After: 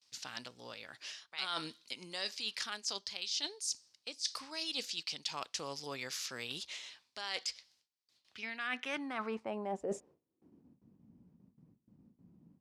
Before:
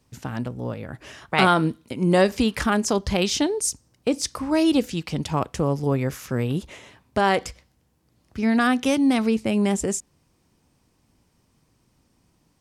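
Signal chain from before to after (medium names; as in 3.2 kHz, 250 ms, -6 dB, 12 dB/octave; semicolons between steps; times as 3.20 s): gate with hold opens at -54 dBFS; wow and flutter 23 cents; band-pass sweep 4.5 kHz -> 200 Hz, 8.09–10.82 s; reverse; compression 8:1, threshold -43 dBFS, peak gain reduction 18 dB; reverse; trim +8 dB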